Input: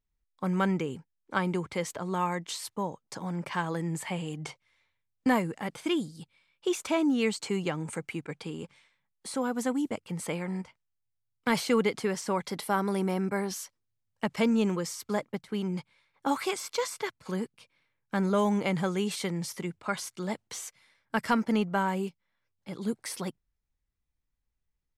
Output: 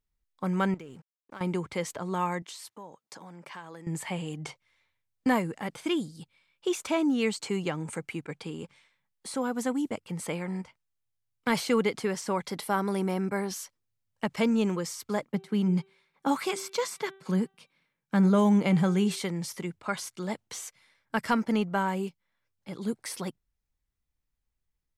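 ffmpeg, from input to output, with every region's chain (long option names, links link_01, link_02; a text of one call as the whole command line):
ffmpeg -i in.wav -filter_complex "[0:a]asettb=1/sr,asplit=3[link_01][link_02][link_03];[link_01]atrim=end=0.744[link_04];[link_02]atrim=start=0.74:end=1.41,asetpts=PTS-STARTPTS,afade=type=in:duration=0.004:curve=qsin,afade=type=out:start_time=0.666:duration=0.004:curve=qsin,acompressor=threshold=-41dB:ratio=4:attack=3.2:release=140:knee=1:detection=peak,aeval=exprs='sgn(val(0))*max(abs(val(0))-0.00112,0)':channel_layout=same[link_05];[link_03]atrim=start=1.406[link_06];[link_04][link_05]acrossfade=duration=0.004:curve1=hsin:curve2=qsin[link_07];[link_07][link_06]acrossfade=duration=0.004:curve1=qsin:curve2=hsin,asettb=1/sr,asplit=3[link_08][link_09][link_10];[link_08]atrim=end=2.424[link_11];[link_09]atrim=start=2.42:end=3.87,asetpts=PTS-STARTPTS,afade=type=in:duration=0.004:curve=qsin,afade=type=out:start_time=1.446:duration=0.004:curve=qsin,acompressor=threshold=-43dB:ratio=2.5:attack=3.2:release=140:knee=1:detection=peak,highpass=frequency=310:poles=1[link_12];[link_10]atrim=start=3.866[link_13];[link_11][link_12]acrossfade=duration=0.004:curve1=hsin:curve2=qsin[link_14];[link_14][link_13]acrossfade=duration=0.004:curve1=qsin:curve2=hsin,asettb=1/sr,asplit=3[link_15][link_16][link_17];[link_15]atrim=end=15.274[link_18];[link_16]atrim=start=15.27:end=19.2,asetpts=PTS-STARTPTS,afade=type=in:duration=0.004:curve=qsin,afade=type=out:start_time=3.926:duration=0.004:curve=qsin,lowshelf=frequency=110:width_type=q:width=3:gain=-14,bandreject=frequency=387.3:width_type=h:width=4,bandreject=frequency=774.6:width_type=h:width=4,bandreject=frequency=1161.9:width_type=h:width=4,bandreject=frequency=1549.2:width_type=h:width=4,bandreject=frequency=1936.5:width_type=h:width=4,bandreject=frequency=2323.8:width_type=h:width=4,bandreject=frequency=2711.1:width_type=h:width=4,bandreject=frequency=3098.4:width_type=h:width=4,bandreject=frequency=3485.7:width_type=h:width=4,bandreject=frequency=3873:width_type=h:width=4[link_19];[link_17]atrim=start=19.196[link_20];[link_18][link_19]acrossfade=duration=0.004:curve1=hsin:curve2=qsin[link_21];[link_21][link_20]acrossfade=duration=0.004:curve1=qsin:curve2=hsin" out.wav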